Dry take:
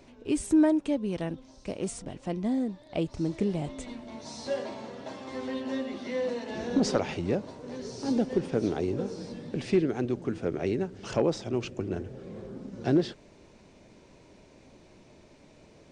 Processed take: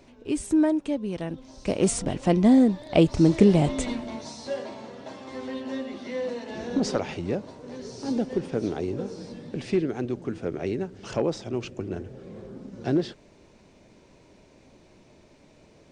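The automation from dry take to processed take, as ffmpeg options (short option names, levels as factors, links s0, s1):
-af "volume=3.76,afade=t=in:st=1.28:d=0.65:silence=0.281838,afade=t=out:st=3.85:d=0.51:silence=0.266073"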